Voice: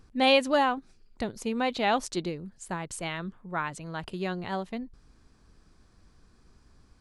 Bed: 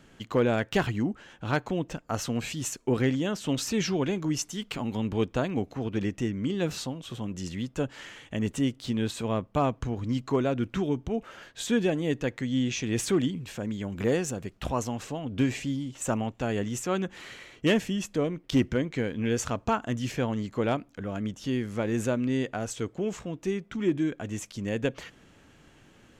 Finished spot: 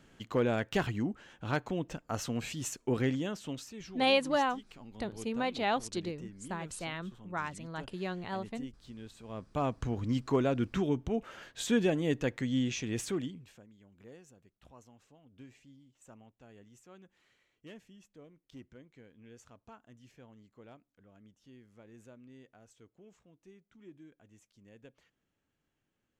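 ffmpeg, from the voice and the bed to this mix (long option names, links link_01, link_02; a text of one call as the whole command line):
ffmpeg -i stem1.wav -i stem2.wav -filter_complex "[0:a]adelay=3800,volume=-5dB[link_01];[1:a]volume=11.5dB,afade=type=out:start_time=3.14:duration=0.58:silence=0.199526,afade=type=in:start_time=9.25:duration=0.66:silence=0.149624,afade=type=out:start_time=12.43:duration=1.24:silence=0.0595662[link_02];[link_01][link_02]amix=inputs=2:normalize=0" out.wav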